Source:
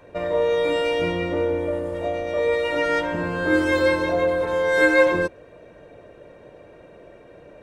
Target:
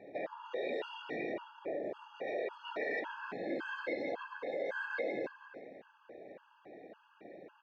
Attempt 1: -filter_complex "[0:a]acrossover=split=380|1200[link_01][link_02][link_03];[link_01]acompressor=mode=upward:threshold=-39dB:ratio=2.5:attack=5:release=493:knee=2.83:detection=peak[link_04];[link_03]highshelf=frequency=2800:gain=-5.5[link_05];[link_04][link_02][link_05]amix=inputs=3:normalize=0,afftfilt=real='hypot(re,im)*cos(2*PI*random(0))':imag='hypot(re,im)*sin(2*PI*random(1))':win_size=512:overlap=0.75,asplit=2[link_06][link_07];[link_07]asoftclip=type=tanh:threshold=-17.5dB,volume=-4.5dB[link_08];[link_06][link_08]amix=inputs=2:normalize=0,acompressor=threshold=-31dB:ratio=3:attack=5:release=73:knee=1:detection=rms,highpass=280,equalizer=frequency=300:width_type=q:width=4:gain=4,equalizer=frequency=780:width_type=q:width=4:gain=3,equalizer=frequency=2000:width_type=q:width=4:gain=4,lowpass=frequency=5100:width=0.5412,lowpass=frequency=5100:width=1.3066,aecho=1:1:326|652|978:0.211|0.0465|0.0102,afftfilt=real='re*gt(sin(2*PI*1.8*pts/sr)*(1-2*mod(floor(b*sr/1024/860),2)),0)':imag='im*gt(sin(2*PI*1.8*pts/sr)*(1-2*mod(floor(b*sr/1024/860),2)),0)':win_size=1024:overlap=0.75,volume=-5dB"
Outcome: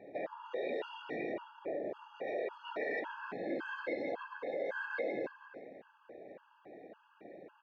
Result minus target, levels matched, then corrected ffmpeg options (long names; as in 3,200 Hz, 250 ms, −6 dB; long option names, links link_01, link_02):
4,000 Hz band −2.5 dB
-filter_complex "[0:a]acrossover=split=380|1200[link_01][link_02][link_03];[link_01]acompressor=mode=upward:threshold=-39dB:ratio=2.5:attack=5:release=493:knee=2.83:detection=peak[link_04];[link_04][link_02][link_03]amix=inputs=3:normalize=0,afftfilt=real='hypot(re,im)*cos(2*PI*random(0))':imag='hypot(re,im)*sin(2*PI*random(1))':win_size=512:overlap=0.75,asplit=2[link_05][link_06];[link_06]asoftclip=type=tanh:threshold=-17.5dB,volume=-4.5dB[link_07];[link_05][link_07]amix=inputs=2:normalize=0,acompressor=threshold=-31dB:ratio=3:attack=5:release=73:knee=1:detection=rms,highpass=280,equalizer=frequency=300:width_type=q:width=4:gain=4,equalizer=frequency=780:width_type=q:width=4:gain=3,equalizer=frequency=2000:width_type=q:width=4:gain=4,lowpass=frequency=5100:width=0.5412,lowpass=frequency=5100:width=1.3066,aecho=1:1:326|652|978:0.211|0.0465|0.0102,afftfilt=real='re*gt(sin(2*PI*1.8*pts/sr)*(1-2*mod(floor(b*sr/1024/860),2)),0)':imag='im*gt(sin(2*PI*1.8*pts/sr)*(1-2*mod(floor(b*sr/1024/860),2)),0)':win_size=1024:overlap=0.75,volume=-5dB"